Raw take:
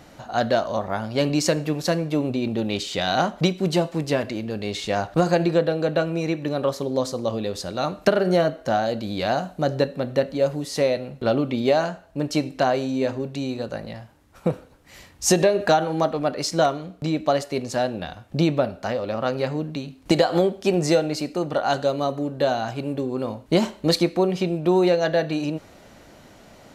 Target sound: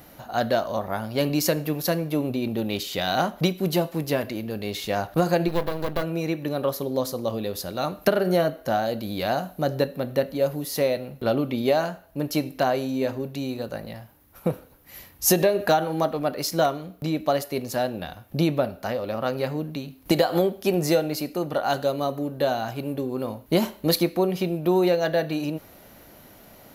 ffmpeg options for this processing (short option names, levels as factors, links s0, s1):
-filter_complex "[0:a]asplit=3[s0][s1][s2];[s0]afade=t=out:st=5.47:d=0.02[s3];[s1]aeval=exprs='max(val(0),0)':c=same,afade=t=in:st=5.47:d=0.02,afade=t=out:st=6.02:d=0.02[s4];[s2]afade=t=in:st=6.02:d=0.02[s5];[s3][s4][s5]amix=inputs=3:normalize=0,aexciter=amount=10.8:drive=4.5:freq=11000,volume=0.794"